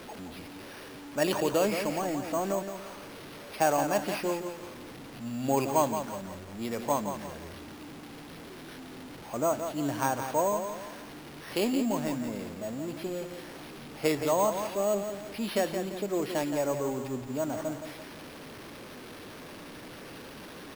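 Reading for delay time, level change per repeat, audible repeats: 0.171 s, -8.0 dB, 3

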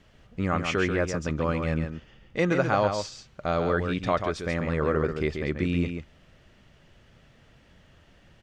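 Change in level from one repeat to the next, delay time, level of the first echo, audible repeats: no steady repeat, 0.137 s, -6.5 dB, 1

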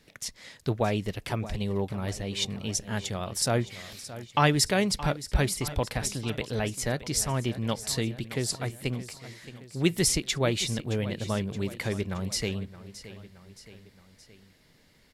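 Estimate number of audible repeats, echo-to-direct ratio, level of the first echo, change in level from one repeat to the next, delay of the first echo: 3, -13.5 dB, -15.0 dB, -5.0 dB, 0.621 s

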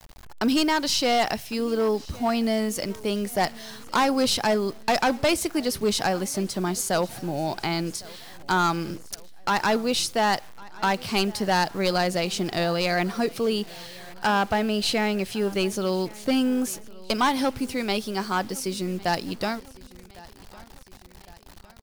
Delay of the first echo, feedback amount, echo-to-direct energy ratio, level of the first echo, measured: 1.107 s, 49%, -21.0 dB, -22.0 dB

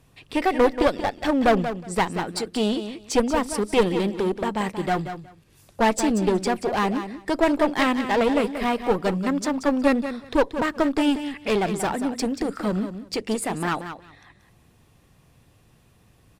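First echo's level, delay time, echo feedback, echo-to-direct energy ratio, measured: -10.0 dB, 0.183 s, 16%, -10.0 dB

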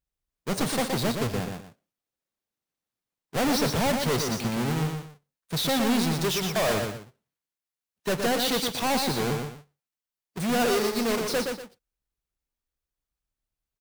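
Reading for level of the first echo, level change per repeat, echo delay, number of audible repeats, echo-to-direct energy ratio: -5.0 dB, -11.0 dB, 0.12 s, 2, -4.5 dB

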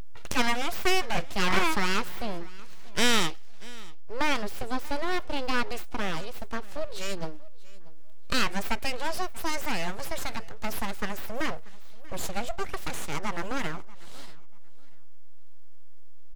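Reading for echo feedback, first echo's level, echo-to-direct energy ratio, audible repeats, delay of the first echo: 25%, -21.5 dB, -21.0 dB, 2, 0.637 s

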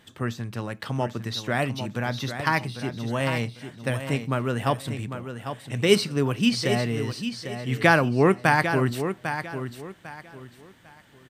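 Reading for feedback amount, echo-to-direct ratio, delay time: 27%, -8.5 dB, 0.799 s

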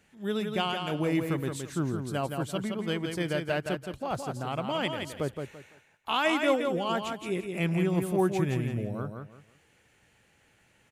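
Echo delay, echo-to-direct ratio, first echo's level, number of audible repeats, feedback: 0.169 s, -5.0 dB, -5.5 dB, 3, 25%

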